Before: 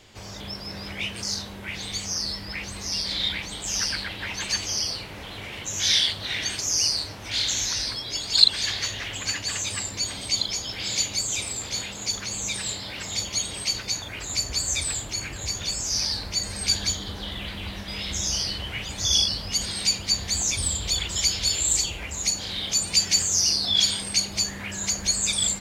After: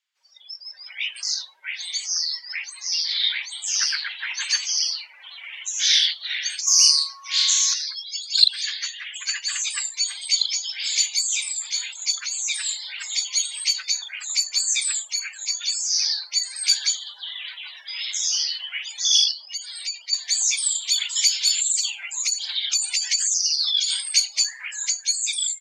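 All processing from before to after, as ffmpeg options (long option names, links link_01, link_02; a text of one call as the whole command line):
ffmpeg -i in.wav -filter_complex "[0:a]asettb=1/sr,asplit=3[link_01][link_02][link_03];[link_01]atrim=end=6.674[link_04];[link_02]atrim=start=6.67:end=7.74,asetpts=PTS-STARTPTS,afade=type=in:duration=0.004:curve=qsin,afade=type=out:start_time=1.066:duration=0.004:curve=qsin,bass=frequency=250:gain=-14,treble=frequency=4000:gain=6,aeval=exprs='val(0)+0.0158*sin(2*PI*1100*n/s)':channel_layout=same,asplit=2[link_05][link_06];[link_06]adelay=34,volume=-4.5dB[link_07];[link_05][link_07]amix=inputs=2:normalize=0,atrim=end_sample=47187[link_08];[link_03]atrim=start=7.736[link_09];[link_04][link_08]acrossfade=duration=0.004:curve1=hsin:curve2=qsin[link_10];[link_10][link_09]acrossfade=duration=0.004:curve1=qsin:curve2=hsin,asettb=1/sr,asplit=3[link_11][link_12][link_13];[link_11]atrim=end=19.314[link_14];[link_12]atrim=start=19.31:end=20.13,asetpts=PTS-STARTPTS,afade=type=in:duration=0.004:curve=qsin,afade=type=out:start_time=0.816:duration=0.004:curve=qsin,highshelf=frequency=2900:gain=-7,acompressor=threshold=-30dB:ratio=2:attack=3.2:release=140:knee=1:detection=peak[link_15];[link_13]atrim=start=20.126[link_16];[link_14][link_15]acrossfade=duration=0.004:curve1=hsin:curve2=qsin[link_17];[link_17][link_16]acrossfade=duration=0.004:curve1=qsin:curve2=hsin,asettb=1/sr,asplit=3[link_18][link_19][link_20];[link_18]atrim=end=21.594[link_21];[link_19]atrim=start=21.59:end=23.9,asetpts=PTS-STARTPTS,afade=type=in:duration=0.004:curve=qsin,afade=type=out:start_time=2.306:duration=0.004:curve=qsin,acompressor=threshold=-22dB:ratio=10:attack=3.2:release=140:knee=1:detection=peak,aphaser=in_gain=1:out_gain=1:delay=1.5:decay=0.39:speed=1.1:type=triangular[link_22];[link_20]atrim=start=23.896[link_23];[link_21][link_22]acrossfade=duration=0.004:curve1=hsin:curve2=qsin[link_24];[link_24][link_23]acrossfade=duration=0.004:curve1=qsin:curve2=hsin,dynaudnorm=framelen=100:gausssize=17:maxgain=4.5dB,afftdn=noise_reduction=28:noise_floor=-33,highpass=frequency=1200:width=0.5412,highpass=frequency=1200:width=1.3066" out.wav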